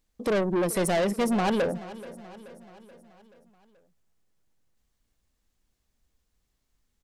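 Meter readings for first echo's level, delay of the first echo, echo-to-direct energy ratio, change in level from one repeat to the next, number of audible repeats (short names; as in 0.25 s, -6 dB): -17.0 dB, 0.43 s, -15.5 dB, -5.0 dB, 4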